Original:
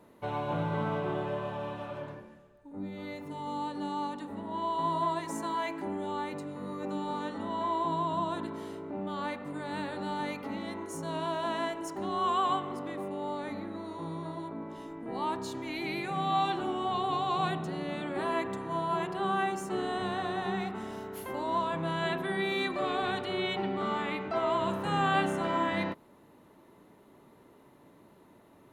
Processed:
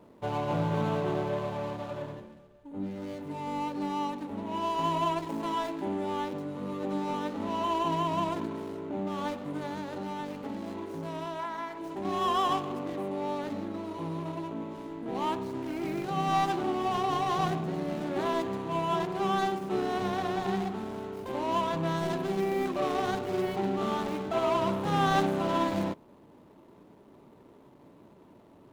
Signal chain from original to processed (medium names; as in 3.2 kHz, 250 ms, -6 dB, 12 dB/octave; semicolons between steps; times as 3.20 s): median filter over 25 samples; 11.40–11.78 s: time-frequency box 770–2400 Hz +8 dB; 9.66–12.05 s: compression 10:1, threshold -36 dBFS, peak gain reduction 12 dB; trim +3.5 dB